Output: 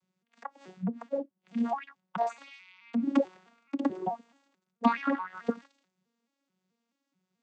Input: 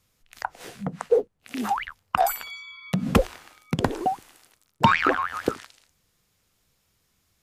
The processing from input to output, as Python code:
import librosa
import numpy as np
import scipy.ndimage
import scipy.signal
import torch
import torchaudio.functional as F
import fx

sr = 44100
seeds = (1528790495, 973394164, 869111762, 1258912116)

y = fx.vocoder_arp(x, sr, chord='major triad', root=54, every_ms=216)
y = y * 10.0 ** (-5.5 / 20.0)